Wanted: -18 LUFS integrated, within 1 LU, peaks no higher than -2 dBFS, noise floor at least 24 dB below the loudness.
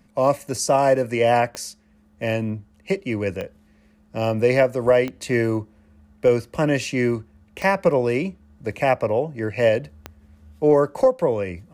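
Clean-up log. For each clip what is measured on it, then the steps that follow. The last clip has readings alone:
clicks found 5; loudness -21.5 LUFS; peak level -7.0 dBFS; loudness target -18.0 LUFS
-> de-click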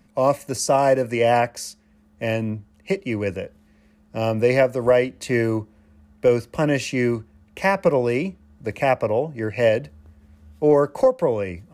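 clicks found 0; loudness -21.5 LUFS; peak level -7.0 dBFS; loudness target -18.0 LUFS
-> trim +3.5 dB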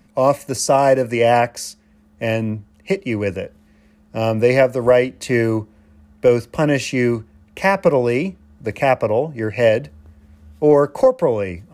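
loudness -18.0 LUFS; peak level -3.5 dBFS; noise floor -53 dBFS

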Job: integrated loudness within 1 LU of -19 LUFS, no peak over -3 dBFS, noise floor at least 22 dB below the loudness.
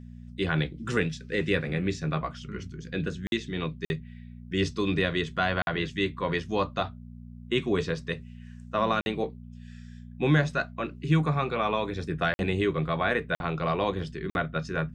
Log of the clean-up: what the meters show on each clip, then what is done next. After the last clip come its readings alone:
dropouts 7; longest dropout 51 ms; hum 60 Hz; highest harmonic 240 Hz; hum level -42 dBFS; loudness -29.0 LUFS; peak level -11.0 dBFS; loudness target -19.0 LUFS
-> interpolate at 3.27/3.85/5.62/9.01/12.34/13.35/14.30 s, 51 ms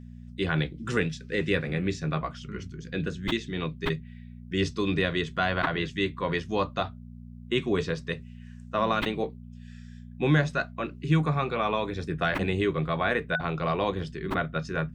dropouts 0; hum 60 Hz; highest harmonic 240 Hz; hum level -42 dBFS
-> de-hum 60 Hz, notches 4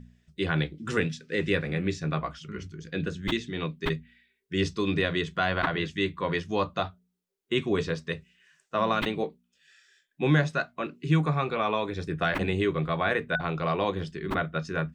hum not found; loudness -29.0 LUFS; peak level -11.0 dBFS; loudness target -19.0 LUFS
-> trim +10 dB; peak limiter -3 dBFS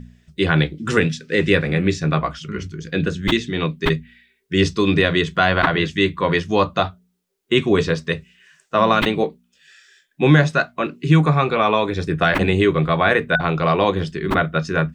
loudness -19.0 LUFS; peak level -3.0 dBFS; noise floor -66 dBFS

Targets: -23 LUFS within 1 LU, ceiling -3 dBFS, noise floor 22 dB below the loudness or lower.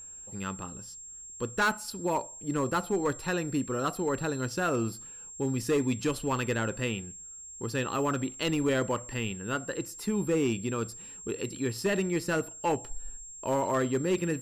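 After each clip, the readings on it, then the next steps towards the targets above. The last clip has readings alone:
clipped samples 0.8%; clipping level -21.0 dBFS; steady tone 7.5 kHz; tone level -43 dBFS; loudness -31.0 LUFS; peak level -21.0 dBFS; loudness target -23.0 LUFS
-> clip repair -21 dBFS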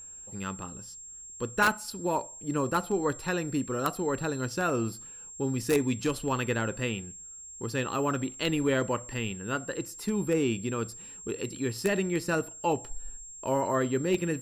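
clipped samples 0.0%; steady tone 7.5 kHz; tone level -43 dBFS
-> band-stop 7.5 kHz, Q 30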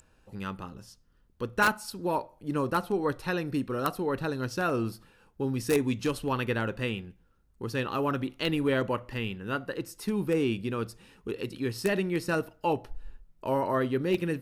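steady tone not found; loudness -30.5 LUFS; peak level -11.5 dBFS; loudness target -23.0 LUFS
-> trim +7.5 dB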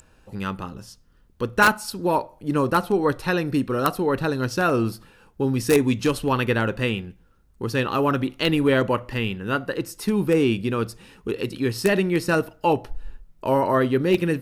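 loudness -23.0 LUFS; peak level -4.0 dBFS; noise floor -57 dBFS

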